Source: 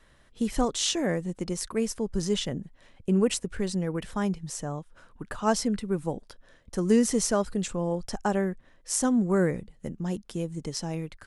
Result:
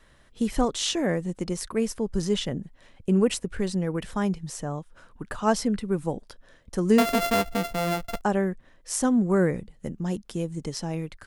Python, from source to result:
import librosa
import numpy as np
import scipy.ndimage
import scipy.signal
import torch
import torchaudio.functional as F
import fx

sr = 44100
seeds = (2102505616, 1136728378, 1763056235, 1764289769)

y = fx.sample_sort(x, sr, block=64, at=(6.98, 8.22))
y = fx.dynamic_eq(y, sr, hz=6900.0, q=0.9, threshold_db=-46.0, ratio=4.0, max_db=-4)
y = F.gain(torch.from_numpy(y), 2.0).numpy()